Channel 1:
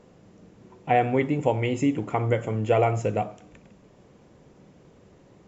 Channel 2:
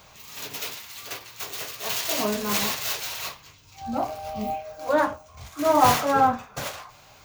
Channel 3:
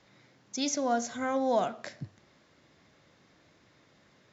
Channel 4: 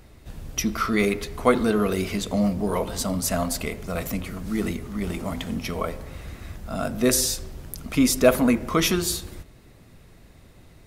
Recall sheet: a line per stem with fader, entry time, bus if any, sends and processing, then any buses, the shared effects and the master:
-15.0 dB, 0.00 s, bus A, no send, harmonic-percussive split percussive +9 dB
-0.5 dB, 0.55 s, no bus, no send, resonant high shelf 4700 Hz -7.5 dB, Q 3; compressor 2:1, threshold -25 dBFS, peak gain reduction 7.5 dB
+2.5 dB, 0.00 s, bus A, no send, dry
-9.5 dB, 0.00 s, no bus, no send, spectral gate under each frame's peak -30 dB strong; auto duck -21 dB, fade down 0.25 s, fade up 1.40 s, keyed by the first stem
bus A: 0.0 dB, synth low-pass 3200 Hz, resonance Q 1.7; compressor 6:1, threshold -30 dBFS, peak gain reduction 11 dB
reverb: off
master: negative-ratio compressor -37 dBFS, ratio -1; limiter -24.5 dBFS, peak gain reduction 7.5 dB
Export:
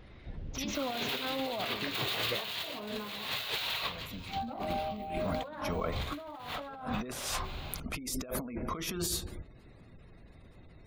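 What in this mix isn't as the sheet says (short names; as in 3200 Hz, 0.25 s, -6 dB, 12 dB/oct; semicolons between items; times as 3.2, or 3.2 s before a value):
stem 1 -15.0 dB -> -26.5 dB; stem 3 +2.5 dB -> -6.5 dB; master: missing limiter -24.5 dBFS, peak gain reduction 7.5 dB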